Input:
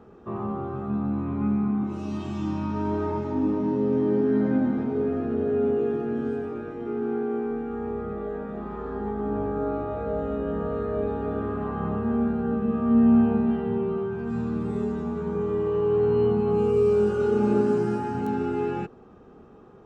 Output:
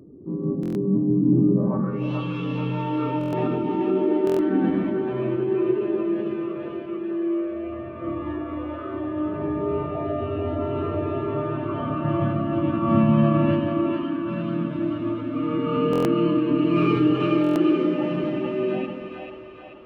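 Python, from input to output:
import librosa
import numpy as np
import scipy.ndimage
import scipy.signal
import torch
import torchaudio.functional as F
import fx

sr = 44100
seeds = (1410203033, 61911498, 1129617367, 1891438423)

p1 = fx.filter_sweep_lowpass(x, sr, from_hz=300.0, to_hz=2900.0, start_s=1.47, end_s=2.05, q=4.1)
p2 = fx.pitch_keep_formants(p1, sr, semitones=6.5)
p3 = p2 + fx.echo_split(p2, sr, split_hz=450.0, low_ms=139, high_ms=437, feedback_pct=52, wet_db=-4, dry=0)
y = fx.buffer_glitch(p3, sr, at_s=(0.61, 3.19, 4.25, 15.91, 17.42), block=1024, repeats=5)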